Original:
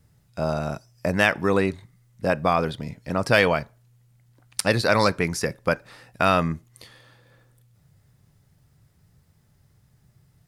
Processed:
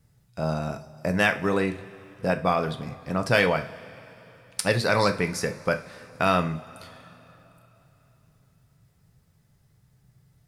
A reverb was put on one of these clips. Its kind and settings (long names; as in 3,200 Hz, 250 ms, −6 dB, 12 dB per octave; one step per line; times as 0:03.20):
coupled-rooms reverb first 0.32 s, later 3.6 s, from −20 dB, DRR 6.5 dB
level −3 dB